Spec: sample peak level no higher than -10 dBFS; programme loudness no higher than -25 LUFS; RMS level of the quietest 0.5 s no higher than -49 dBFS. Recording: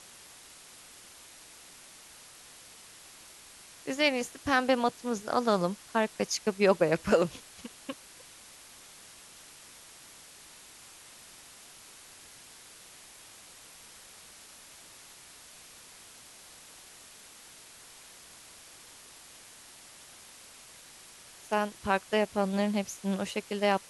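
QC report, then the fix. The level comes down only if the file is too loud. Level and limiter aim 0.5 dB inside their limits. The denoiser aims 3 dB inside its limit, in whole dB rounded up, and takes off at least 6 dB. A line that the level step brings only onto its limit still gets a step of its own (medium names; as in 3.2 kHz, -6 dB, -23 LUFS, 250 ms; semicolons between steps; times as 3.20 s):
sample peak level -11.0 dBFS: pass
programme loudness -29.5 LUFS: pass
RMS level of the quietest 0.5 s -52 dBFS: pass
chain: none needed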